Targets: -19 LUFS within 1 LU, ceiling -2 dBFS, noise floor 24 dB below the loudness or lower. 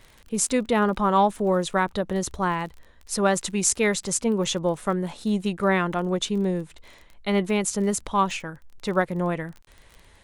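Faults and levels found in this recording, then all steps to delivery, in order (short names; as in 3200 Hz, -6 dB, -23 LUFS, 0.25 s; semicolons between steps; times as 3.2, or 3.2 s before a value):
ticks 30/s; loudness -24.5 LUFS; peak -3.5 dBFS; loudness target -19.0 LUFS
-> de-click; gain +5.5 dB; limiter -2 dBFS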